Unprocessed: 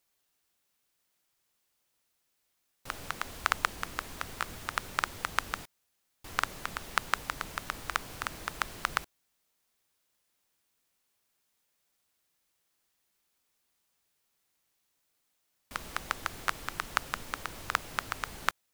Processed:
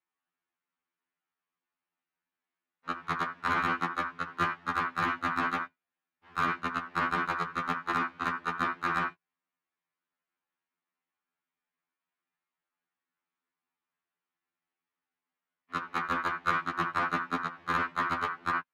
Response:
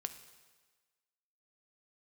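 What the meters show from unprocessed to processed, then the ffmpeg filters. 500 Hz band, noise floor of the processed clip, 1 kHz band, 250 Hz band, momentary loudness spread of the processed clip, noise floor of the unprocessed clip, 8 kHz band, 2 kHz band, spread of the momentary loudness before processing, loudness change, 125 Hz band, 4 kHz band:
+5.0 dB, under -85 dBFS, +6.0 dB, +11.0 dB, 6 LU, -78 dBFS, under -10 dB, +3.0 dB, 9 LU, +4.0 dB, +5.0 dB, -4.0 dB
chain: -filter_complex "[0:a]agate=range=-32dB:threshold=-35dB:ratio=16:detection=peak,highpass=180,lowpass=2.2k,asplit=2[a][b];[1:a]atrim=start_sample=2205,afade=t=out:st=0.15:d=0.01,atrim=end_sample=7056,highshelf=f=9.2k:g=-10[c];[b][c]afir=irnorm=-1:irlink=0,volume=4dB[d];[a][d]amix=inputs=2:normalize=0,volume=8dB,asoftclip=hard,volume=-8dB,equalizer=f=520:w=1.3:g=-11.5,acompressor=threshold=-30dB:ratio=8,lowshelf=f=310:g=10.5,asplit=2[e][f];[f]highpass=f=720:p=1,volume=34dB,asoftclip=type=tanh:threshold=-8.5dB[g];[e][g]amix=inputs=2:normalize=0,lowpass=f=1.5k:p=1,volume=-6dB,afftfilt=real='re*2*eq(mod(b,4),0)':imag='im*2*eq(mod(b,4),0)':win_size=2048:overlap=0.75"

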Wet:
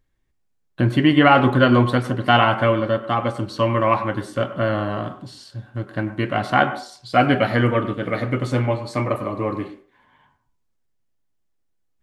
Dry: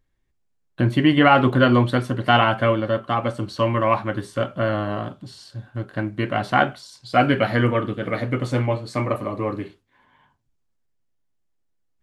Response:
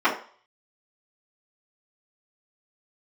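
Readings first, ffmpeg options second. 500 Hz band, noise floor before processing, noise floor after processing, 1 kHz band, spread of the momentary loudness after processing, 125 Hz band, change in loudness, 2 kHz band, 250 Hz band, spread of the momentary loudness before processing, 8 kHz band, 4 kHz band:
+1.0 dB, -70 dBFS, -69 dBFS, +1.5 dB, 15 LU, +1.0 dB, +1.0 dB, +1.0 dB, +1.5 dB, 15 LU, +1.0 dB, +1.0 dB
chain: -filter_complex "[0:a]asplit=2[a][b];[1:a]atrim=start_sample=2205,adelay=93[c];[b][c]afir=irnorm=-1:irlink=0,volume=-30.5dB[d];[a][d]amix=inputs=2:normalize=0,volume=1dB"

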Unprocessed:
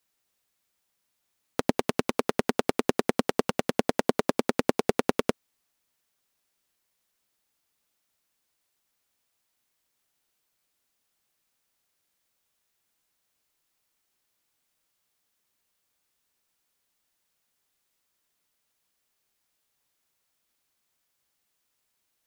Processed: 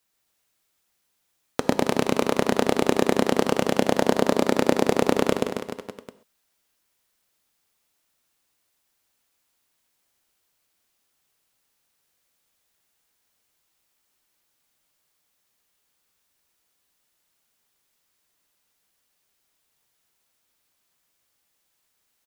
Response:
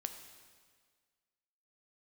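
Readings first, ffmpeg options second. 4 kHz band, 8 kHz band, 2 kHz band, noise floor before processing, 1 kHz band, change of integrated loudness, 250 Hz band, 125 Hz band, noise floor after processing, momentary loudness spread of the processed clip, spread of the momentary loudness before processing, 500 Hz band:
+5.0 dB, +5.0 dB, +4.0 dB, -78 dBFS, +4.5 dB, +4.5 dB, +5.0 dB, +5.0 dB, -73 dBFS, 9 LU, 2 LU, +5.0 dB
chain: -filter_complex "[0:a]aecho=1:1:130|273|430.3|603.3|793.7:0.631|0.398|0.251|0.158|0.1,asplit=2[a][b];[1:a]atrim=start_sample=2205,atrim=end_sample=6174[c];[b][c]afir=irnorm=-1:irlink=0,volume=7dB[d];[a][d]amix=inputs=2:normalize=0,volume=-6.5dB"

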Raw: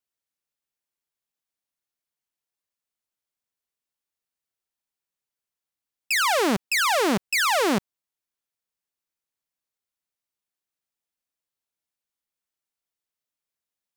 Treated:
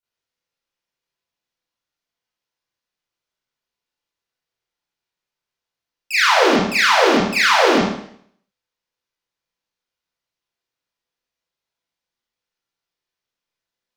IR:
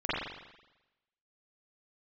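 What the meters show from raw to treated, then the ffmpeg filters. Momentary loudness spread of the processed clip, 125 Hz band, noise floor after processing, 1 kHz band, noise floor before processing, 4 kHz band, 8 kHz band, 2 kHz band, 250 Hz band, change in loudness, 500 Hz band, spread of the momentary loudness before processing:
8 LU, +7.0 dB, under -85 dBFS, +7.5 dB, under -85 dBFS, +7.5 dB, +1.5 dB, +8.0 dB, +6.5 dB, +7.0 dB, +8.5 dB, 4 LU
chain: -filter_complex "[1:a]atrim=start_sample=2205,asetrate=70560,aresample=44100[a];[0:a][a]afir=irnorm=-1:irlink=0,volume=1.5dB"

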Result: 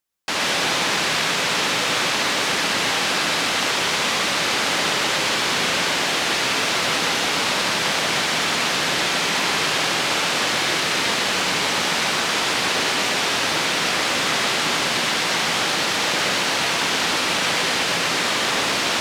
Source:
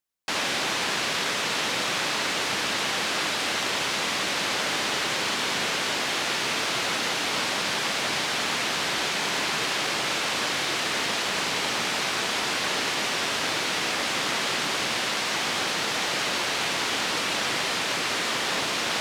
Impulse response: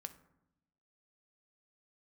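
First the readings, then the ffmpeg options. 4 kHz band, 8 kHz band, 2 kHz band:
+5.5 dB, +5.5 dB, +5.5 dB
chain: -filter_complex "[0:a]asplit=2[a][b];[1:a]atrim=start_sample=2205,adelay=122[c];[b][c]afir=irnorm=-1:irlink=0,volume=1.5dB[d];[a][d]amix=inputs=2:normalize=0,volume=4dB"

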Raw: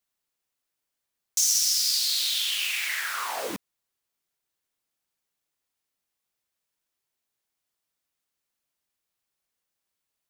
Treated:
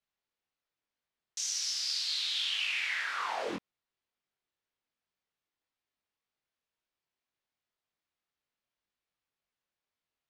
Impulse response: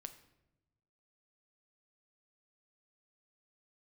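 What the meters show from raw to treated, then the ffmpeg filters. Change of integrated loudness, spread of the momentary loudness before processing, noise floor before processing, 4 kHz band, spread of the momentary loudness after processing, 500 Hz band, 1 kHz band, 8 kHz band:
-8.0 dB, 12 LU, -84 dBFS, -6.5 dB, 8 LU, -2.5 dB, -2.5 dB, -12.5 dB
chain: -af "flanger=delay=20:depth=4.9:speed=1.9,lowpass=4k"

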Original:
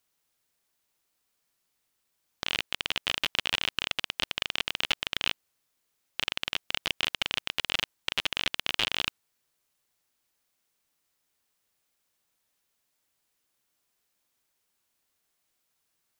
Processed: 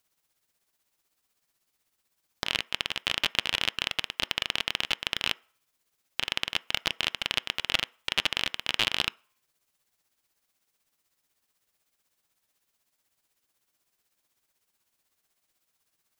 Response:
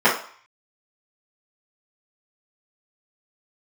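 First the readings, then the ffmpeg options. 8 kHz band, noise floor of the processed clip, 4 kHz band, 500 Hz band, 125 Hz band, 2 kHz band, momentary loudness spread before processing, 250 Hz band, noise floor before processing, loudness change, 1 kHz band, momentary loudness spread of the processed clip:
+1.5 dB, -80 dBFS, +1.0 dB, +1.5 dB, +1.5 dB, +1.0 dB, 4 LU, +1.5 dB, -78 dBFS, +1.0 dB, +1.5 dB, 4 LU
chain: -filter_complex "[0:a]tremolo=f=16:d=0.57,asplit=2[a][b];[1:a]atrim=start_sample=2205[c];[b][c]afir=irnorm=-1:irlink=0,volume=-41dB[d];[a][d]amix=inputs=2:normalize=0,volume=4dB"

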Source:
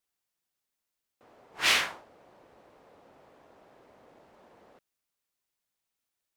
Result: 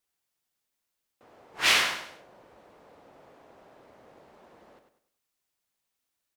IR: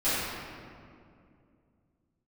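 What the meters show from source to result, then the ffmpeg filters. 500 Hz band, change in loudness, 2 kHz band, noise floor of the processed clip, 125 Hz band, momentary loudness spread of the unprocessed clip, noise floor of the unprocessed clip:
+2.5 dB, +2.0 dB, +2.5 dB, -83 dBFS, +2.5 dB, 8 LU, under -85 dBFS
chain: -af "aecho=1:1:99|198|297|396:0.422|0.148|0.0517|0.0181,volume=2dB"

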